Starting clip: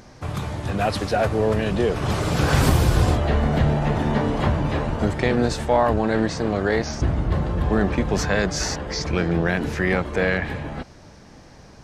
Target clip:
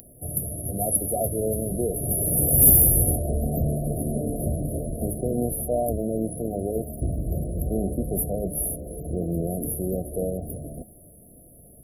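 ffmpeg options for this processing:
ffmpeg -i in.wav -af "afftfilt=real='re*(1-between(b*sr/4096,740,10000))':imag='im*(1-between(b*sr/4096,740,10000))':win_size=4096:overlap=0.75,aexciter=amount=12.5:drive=9.1:freq=2400,bandreject=frequency=105.6:width_type=h:width=4,bandreject=frequency=211.2:width_type=h:width=4,bandreject=frequency=316.8:width_type=h:width=4,bandreject=frequency=422.4:width_type=h:width=4,bandreject=frequency=528:width_type=h:width=4,bandreject=frequency=633.6:width_type=h:width=4,bandreject=frequency=739.2:width_type=h:width=4,bandreject=frequency=844.8:width_type=h:width=4,bandreject=frequency=950.4:width_type=h:width=4,bandreject=frequency=1056:width_type=h:width=4,bandreject=frequency=1161.6:width_type=h:width=4,bandreject=frequency=1267.2:width_type=h:width=4,bandreject=frequency=1372.8:width_type=h:width=4,bandreject=frequency=1478.4:width_type=h:width=4,bandreject=frequency=1584:width_type=h:width=4,bandreject=frequency=1689.6:width_type=h:width=4,bandreject=frequency=1795.2:width_type=h:width=4,bandreject=frequency=1900.8:width_type=h:width=4,bandreject=frequency=2006.4:width_type=h:width=4,bandreject=frequency=2112:width_type=h:width=4,bandreject=frequency=2217.6:width_type=h:width=4,bandreject=frequency=2323.2:width_type=h:width=4,bandreject=frequency=2428.8:width_type=h:width=4,bandreject=frequency=2534.4:width_type=h:width=4,bandreject=frequency=2640:width_type=h:width=4,bandreject=frequency=2745.6:width_type=h:width=4,bandreject=frequency=2851.2:width_type=h:width=4,bandreject=frequency=2956.8:width_type=h:width=4,bandreject=frequency=3062.4:width_type=h:width=4,bandreject=frequency=3168:width_type=h:width=4,bandreject=frequency=3273.6:width_type=h:width=4,bandreject=frequency=3379.2:width_type=h:width=4,bandreject=frequency=3484.8:width_type=h:width=4,bandreject=frequency=3590.4:width_type=h:width=4,bandreject=frequency=3696:width_type=h:width=4,bandreject=frequency=3801.6:width_type=h:width=4,bandreject=frequency=3907.2:width_type=h:width=4,bandreject=frequency=4012.8:width_type=h:width=4,bandreject=frequency=4118.4:width_type=h:width=4,volume=-5dB" out.wav

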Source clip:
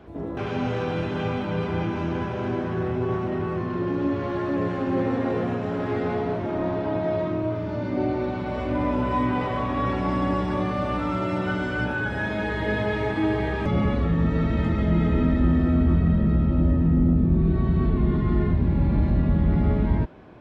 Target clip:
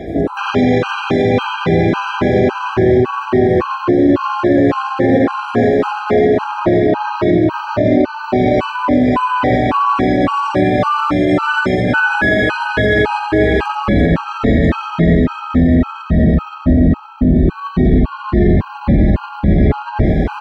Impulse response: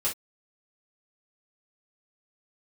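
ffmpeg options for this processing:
-af "equalizer=frequency=87:width_type=o:width=2.2:gain=-6.5,areverse,acompressor=mode=upward:threshold=-29dB:ratio=2.5,areverse,aecho=1:1:88|715:0.596|0.355,alimiter=level_in=20.5dB:limit=-1dB:release=50:level=0:latency=1,afftfilt=real='re*gt(sin(2*PI*1.8*pts/sr)*(1-2*mod(floor(b*sr/1024/800),2)),0)':imag='im*gt(sin(2*PI*1.8*pts/sr)*(1-2*mod(floor(b*sr/1024/800),2)),0)':win_size=1024:overlap=0.75,volume=-2dB"

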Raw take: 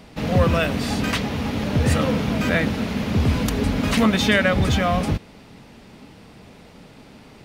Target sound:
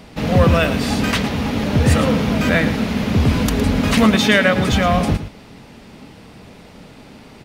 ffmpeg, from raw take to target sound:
ffmpeg -i in.wav -filter_complex "[0:a]asettb=1/sr,asplit=3[link_01][link_02][link_03];[link_01]atrim=end=4.164[link_04];[link_02]atrim=start=4.16:end=4.73,asetpts=PTS-STARTPTS,afade=type=in:duration=0.004:curve=qsin,afade=type=out:start_time=0.566:duration=0.004:curve=qsin,highpass=140[link_05];[link_03]atrim=start=4.726[link_06];[link_04][link_05]acrossfade=duration=0.004:curve1=hsin:curve2=qsin[link_07];[link_07][link_06]acrossfade=duration=0.004:curve1=qsin:curve2=hsin,asplit=2[link_08][link_09];[link_09]aecho=0:1:112:0.251[link_10];[link_08][link_10]amix=inputs=2:normalize=0,volume=4dB" out.wav

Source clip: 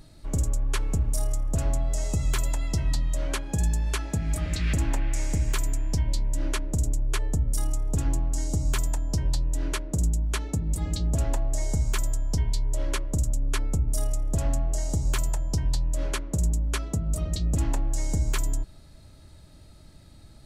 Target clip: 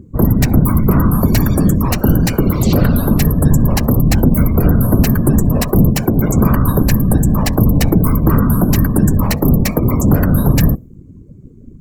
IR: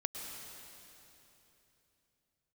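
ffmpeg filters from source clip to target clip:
-filter_complex "[0:a]asplit=2[link_01][link_02];[1:a]atrim=start_sample=2205,atrim=end_sample=6174[link_03];[link_02][link_03]afir=irnorm=-1:irlink=0,volume=-11dB[link_04];[link_01][link_04]amix=inputs=2:normalize=0,afftfilt=real='hypot(re,im)*cos(2*PI*random(0))':imag='hypot(re,im)*sin(2*PI*random(1))':win_size=512:overlap=0.75,equalizer=frequency=1900:width_type=o:width=0.55:gain=-6.5,apsyclip=19.5dB,asetrate=76440,aresample=44100,afftdn=noise_reduction=29:noise_floor=-29,volume=-1.5dB"

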